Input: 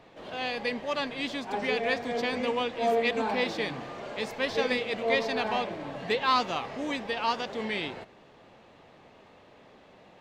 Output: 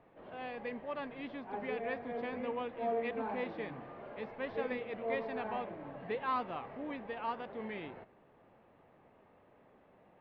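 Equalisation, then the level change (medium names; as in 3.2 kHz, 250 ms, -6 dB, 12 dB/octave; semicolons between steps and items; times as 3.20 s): low-pass 2.1 kHz 12 dB/octave; distance through air 190 m; -8.0 dB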